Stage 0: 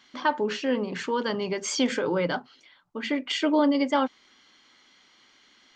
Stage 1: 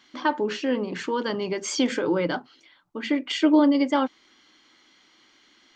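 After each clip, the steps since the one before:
parametric band 320 Hz +8.5 dB 0.28 octaves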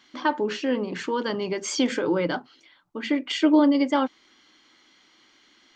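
no processing that can be heard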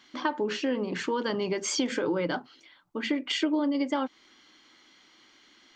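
downward compressor 6 to 1, threshold −24 dBFS, peak gain reduction 10.5 dB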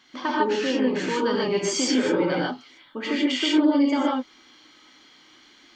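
reverb whose tail is shaped and stops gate 170 ms rising, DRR −4 dB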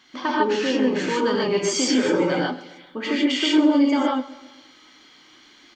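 repeating echo 131 ms, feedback 52%, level −18 dB
level +2 dB

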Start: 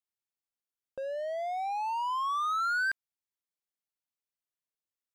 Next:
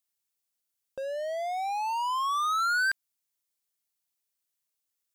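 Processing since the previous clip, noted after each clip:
high-shelf EQ 3,700 Hz +11 dB
level +1.5 dB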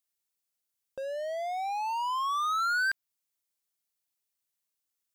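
dynamic equaliser 9,600 Hz, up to −4 dB, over −52 dBFS, Q 0.92
level −1.5 dB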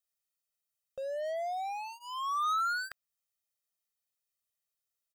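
comb filter 1.6 ms, depth 95%
level −6.5 dB

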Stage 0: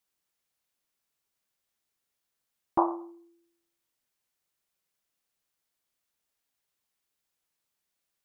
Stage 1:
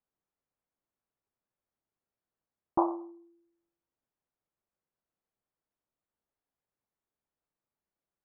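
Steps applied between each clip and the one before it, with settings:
Bessel low-pass filter 900 Hz, order 2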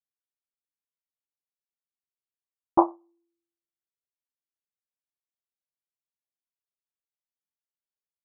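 expander for the loud parts 2.5 to 1, over −41 dBFS
level +9 dB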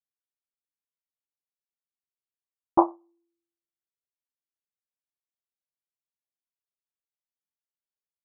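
no processing that can be heard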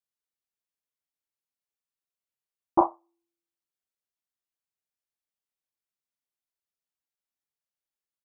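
double-tracking delay 34 ms −6 dB
level −1.5 dB

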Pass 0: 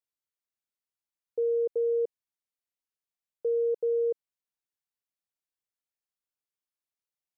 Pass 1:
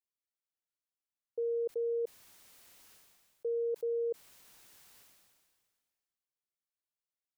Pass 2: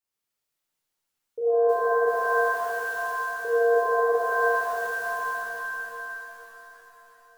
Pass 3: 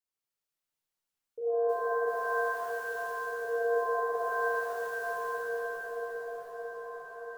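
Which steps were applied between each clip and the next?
level that may fall only so fast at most 31 dB per second; level −6.5 dB
reverb with rising layers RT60 3.9 s, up +7 semitones, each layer −2 dB, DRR −9.5 dB; level +2 dB
echo whose low-pass opens from repeat to repeat 625 ms, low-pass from 200 Hz, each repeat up 1 octave, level −3 dB; level −7.5 dB

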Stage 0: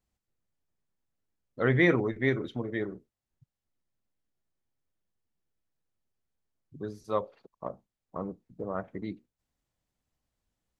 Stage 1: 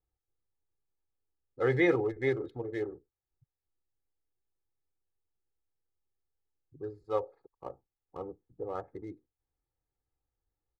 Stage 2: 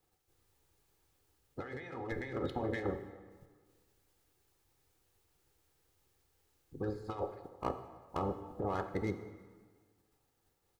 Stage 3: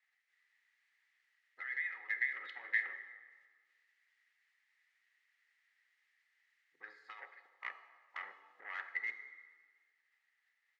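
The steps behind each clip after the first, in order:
adaptive Wiener filter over 15 samples; comb filter 2.4 ms, depth 80%; dynamic equaliser 660 Hz, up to +6 dB, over −40 dBFS, Q 1.4; level −6.5 dB
ceiling on every frequency bin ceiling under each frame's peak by 16 dB; compressor whose output falls as the input rises −40 dBFS, ratio −1; dense smooth reverb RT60 1.6 s, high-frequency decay 0.75×, DRR 8.5 dB; level +1 dB
soft clipping −29 dBFS, distortion −15 dB; four-pole ladder band-pass 2,000 Hz, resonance 85%; level +11.5 dB

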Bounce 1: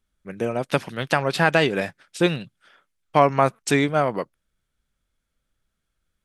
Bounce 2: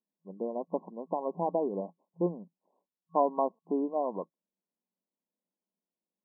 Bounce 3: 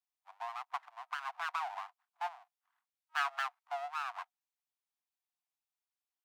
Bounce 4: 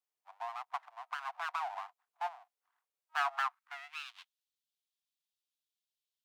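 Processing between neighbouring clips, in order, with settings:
brick-wall band-pass 170–1,100 Hz; level −9 dB
full-wave rectification; Chebyshev high-pass with heavy ripple 700 Hz, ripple 3 dB; level +1.5 dB
high-pass filter sweep 440 Hz → 3,400 Hz, 0:03.03–0:04.09; level −1.5 dB

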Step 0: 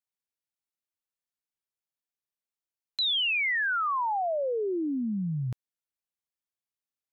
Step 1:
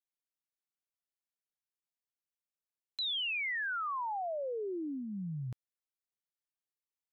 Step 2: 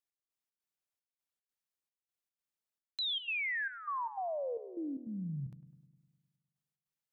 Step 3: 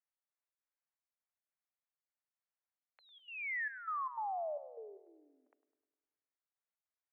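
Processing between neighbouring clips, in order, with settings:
dynamic equaliser 230 Hz, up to −3 dB, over −43 dBFS, Q 4.9; level −8 dB
gate pattern "x..xx.xxx" 151 BPM −12 dB; feedback echo with a low-pass in the loop 102 ms, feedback 63%, low-pass 1,500 Hz, level −14.5 dB
single-sideband voice off tune +120 Hz 410–2,100 Hz; level −1.5 dB

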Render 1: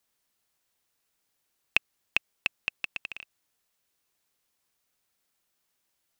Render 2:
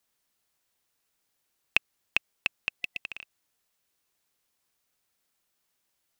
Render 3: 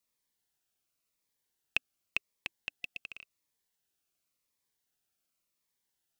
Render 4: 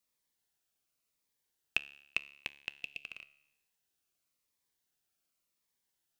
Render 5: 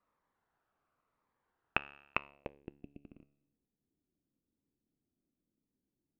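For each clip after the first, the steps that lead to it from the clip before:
healed spectral selection 0:02.78–0:03.01, 720–2,000 Hz before
phaser whose notches keep moving one way falling 0.91 Hz; level −5.5 dB
tuned comb filter 71 Hz, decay 0.86 s, harmonics all, mix 50%; level +4.5 dB
low-pass filter sweep 1,200 Hz → 280 Hz, 0:02.16–0:02.76; level +9 dB

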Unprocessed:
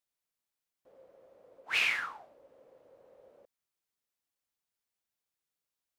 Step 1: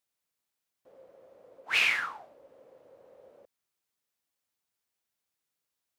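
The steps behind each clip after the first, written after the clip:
high-pass filter 56 Hz
level +3.5 dB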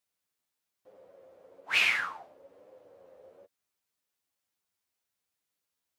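flanger 1.1 Hz, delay 9.6 ms, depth 2.2 ms, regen +18%
level +3.5 dB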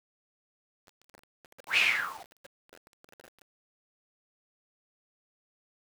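bit-depth reduction 8 bits, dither none

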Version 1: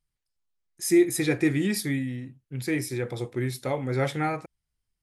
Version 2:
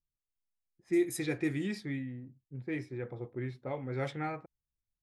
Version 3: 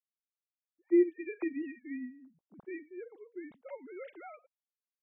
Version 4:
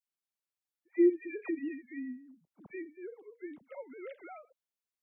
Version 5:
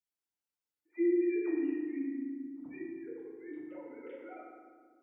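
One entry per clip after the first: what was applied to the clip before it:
low-pass that shuts in the quiet parts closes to 320 Hz, open at −19 dBFS; level −9 dB
three sine waves on the formant tracks
all-pass dispersion lows, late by 68 ms, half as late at 1,600 Hz
feedback delay network reverb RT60 1.7 s, low-frequency decay 1.6×, high-frequency decay 0.55×, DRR −5.5 dB; level −8 dB

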